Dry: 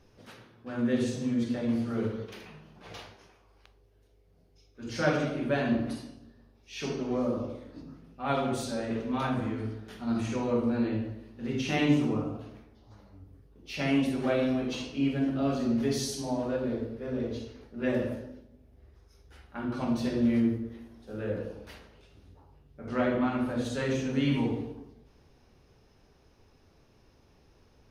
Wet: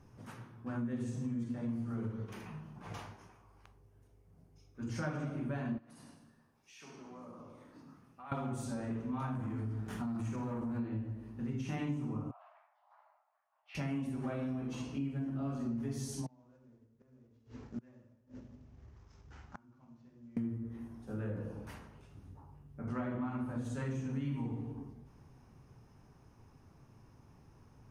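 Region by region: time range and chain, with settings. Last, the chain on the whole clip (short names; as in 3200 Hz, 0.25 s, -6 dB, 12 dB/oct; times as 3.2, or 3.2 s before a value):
5.78–8.32 HPF 1000 Hz 6 dB/oct + compressor 3:1, threshold -51 dBFS + frequency-shifting echo 0.102 s, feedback 41%, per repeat -72 Hz, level -10 dB
9.35–10.79 sample leveller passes 2 + compressor, threshold -30 dBFS
12.31–13.75 steep high-pass 610 Hz 96 dB/oct + air absorption 400 m
16.26–20.37 CVSD 32 kbps + flipped gate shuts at -31 dBFS, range -32 dB
whole clip: graphic EQ 125/250/500/1000/4000/8000 Hz +11/+4/-4/+7/-9/+6 dB; compressor 4:1, threshold -33 dBFS; gain -3.5 dB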